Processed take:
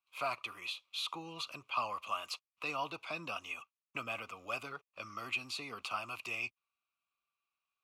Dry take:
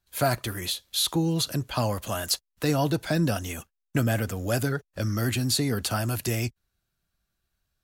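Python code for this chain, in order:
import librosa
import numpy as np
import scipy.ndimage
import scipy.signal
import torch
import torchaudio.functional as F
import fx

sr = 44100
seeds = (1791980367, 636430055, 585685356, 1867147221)

y = fx.double_bandpass(x, sr, hz=1700.0, octaves=1.1)
y = F.gain(torch.from_numpy(y), 3.0).numpy()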